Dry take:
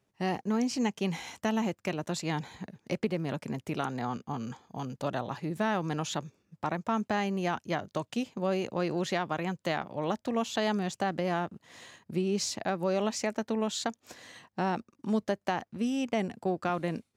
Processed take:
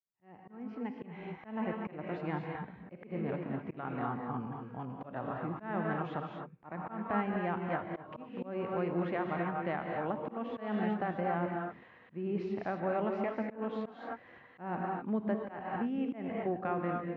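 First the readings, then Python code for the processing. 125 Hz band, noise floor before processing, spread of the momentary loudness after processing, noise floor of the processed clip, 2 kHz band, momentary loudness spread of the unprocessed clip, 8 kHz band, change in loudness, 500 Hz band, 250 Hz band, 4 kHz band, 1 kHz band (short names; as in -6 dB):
-4.0 dB, -79 dBFS, 11 LU, -58 dBFS, -5.0 dB, 8 LU, under -40 dB, -4.5 dB, -4.0 dB, -4.5 dB, -18.5 dB, -3.5 dB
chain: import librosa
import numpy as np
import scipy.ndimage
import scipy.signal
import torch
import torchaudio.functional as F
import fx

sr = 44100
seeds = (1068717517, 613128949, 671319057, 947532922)

y = fx.fade_in_head(x, sr, length_s=1.68)
y = scipy.signal.sosfilt(scipy.signal.butter(4, 2200.0, 'lowpass', fs=sr, output='sos'), y)
y = fx.rev_gated(y, sr, seeds[0], gate_ms=280, shape='rising', drr_db=1.0)
y = fx.auto_swell(y, sr, attack_ms=177.0)
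y = F.gain(torch.from_numpy(y), -5.0).numpy()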